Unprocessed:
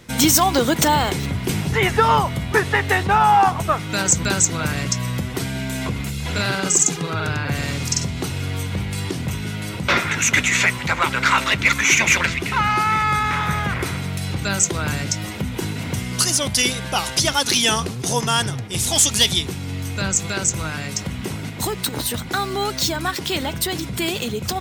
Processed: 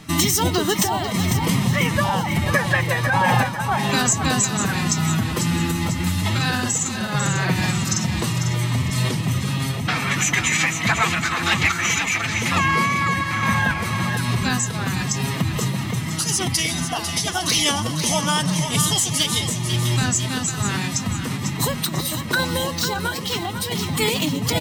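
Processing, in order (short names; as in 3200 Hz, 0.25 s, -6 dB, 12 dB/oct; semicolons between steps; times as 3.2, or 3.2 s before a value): comb 1.3 ms, depth 43%; compressor, threshold -19 dBFS, peak gain reduction 10 dB; random-step tremolo; on a send: split-band echo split 560 Hz, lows 0.334 s, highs 0.497 s, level -8 dB; on the sum: formant-preserving pitch shift +4.5 st; gain +4.5 dB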